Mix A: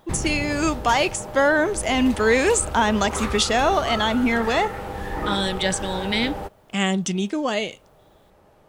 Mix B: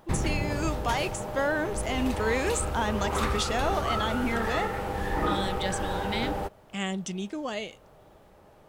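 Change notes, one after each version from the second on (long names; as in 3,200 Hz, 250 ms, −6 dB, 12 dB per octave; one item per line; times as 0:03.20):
speech −9.5 dB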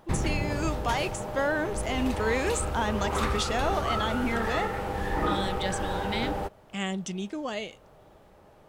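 master: add high-shelf EQ 9,900 Hz −3.5 dB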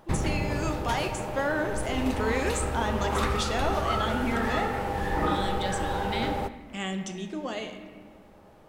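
speech −3.5 dB
reverb: on, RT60 1.5 s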